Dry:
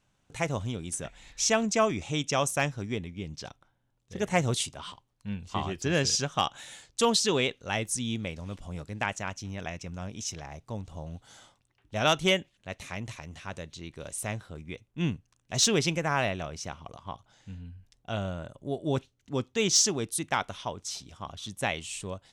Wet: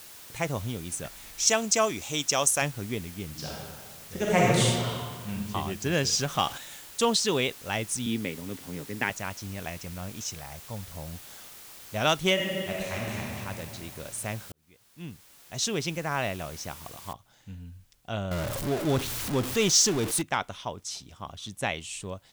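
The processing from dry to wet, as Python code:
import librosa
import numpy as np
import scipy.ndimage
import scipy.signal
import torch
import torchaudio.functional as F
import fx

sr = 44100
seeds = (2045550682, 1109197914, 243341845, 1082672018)

y = fx.bass_treble(x, sr, bass_db=-7, treble_db=10, at=(1.47, 2.62))
y = fx.reverb_throw(y, sr, start_s=3.27, length_s=2.04, rt60_s=1.7, drr_db=-4.5)
y = fx.zero_step(y, sr, step_db=-36.0, at=(6.12, 6.58))
y = fx.cabinet(y, sr, low_hz=110.0, low_slope=24, high_hz=5600.0, hz=(270.0, 410.0, 660.0, 1200.0, 1900.0), db=(10, 8, -7, -4, 8), at=(8.06, 9.1))
y = fx.peak_eq(y, sr, hz=330.0, db=-9.0, octaves=0.78, at=(10.35, 10.94))
y = fx.reverb_throw(y, sr, start_s=12.33, length_s=0.92, rt60_s=2.8, drr_db=-4.5)
y = fx.noise_floor_step(y, sr, seeds[0], at_s=17.13, before_db=-47, after_db=-70, tilt_db=0.0)
y = fx.zero_step(y, sr, step_db=-27.5, at=(18.31, 20.22))
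y = fx.edit(y, sr, fx.fade_in_span(start_s=14.52, length_s=2.07), tone=tone)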